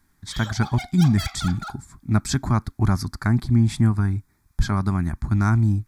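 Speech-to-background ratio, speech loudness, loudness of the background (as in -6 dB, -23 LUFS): 12.5 dB, -22.5 LUFS, -35.0 LUFS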